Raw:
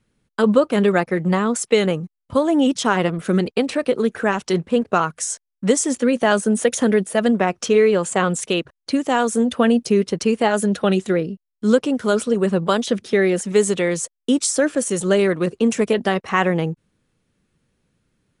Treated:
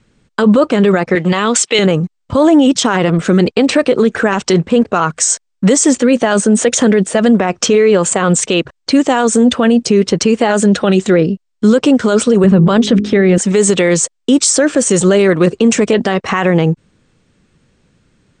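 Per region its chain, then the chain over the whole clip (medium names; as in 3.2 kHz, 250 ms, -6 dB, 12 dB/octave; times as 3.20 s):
1.15–1.79 s: high-pass 360 Hz 6 dB/octave + peaking EQ 3.2 kHz +10 dB 1.2 oct
12.44–13.38 s: tone controls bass +10 dB, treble -8 dB + de-hum 51.83 Hz, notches 8
whole clip: steep low-pass 8.8 kHz 96 dB/octave; loudness maximiser +14 dB; trim -1 dB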